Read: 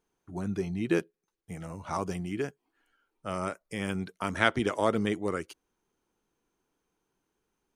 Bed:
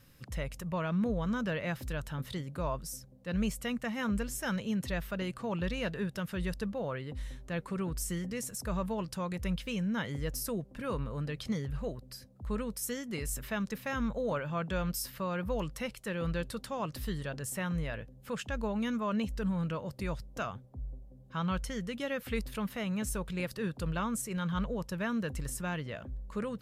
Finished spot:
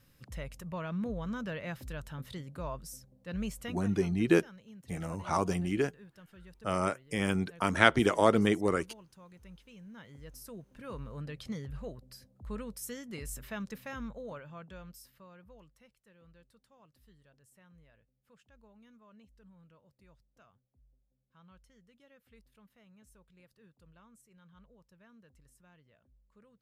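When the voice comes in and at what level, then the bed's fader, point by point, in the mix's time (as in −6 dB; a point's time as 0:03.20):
3.40 s, +2.5 dB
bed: 0:03.66 −4.5 dB
0:03.99 −19 dB
0:09.72 −19 dB
0:11.19 −5 dB
0:13.74 −5 dB
0:16.00 −27 dB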